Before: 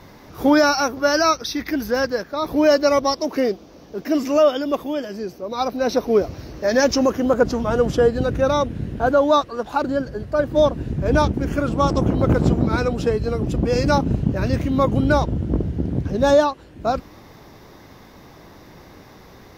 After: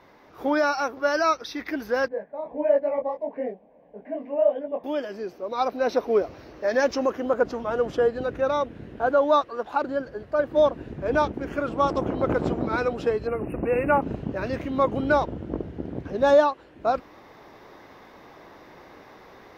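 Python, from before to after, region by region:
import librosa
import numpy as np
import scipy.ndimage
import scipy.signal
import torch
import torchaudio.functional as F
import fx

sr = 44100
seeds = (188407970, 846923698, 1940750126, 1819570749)

y = fx.chain(x, sr, fx.lowpass(hz=1900.0, slope=24),
    fx.fixed_phaser(hz=350.0, stages=6),
    fx.detune_double(cents=55), at=(2.08, 4.84))
y = fx.chain(y, sr, fx.brickwall_bandstop(low_hz=2900.0, high_hz=8500.0),
    fx.high_shelf(hz=3800.0, db=7.5), at=(13.27, 14.02))
y = fx.bass_treble(y, sr, bass_db=-13, treble_db=-12)
y = fx.rider(y, sr, range_db=3, speed_s=2.0)
y = y * librosa.db_to_amplitude(-3.0)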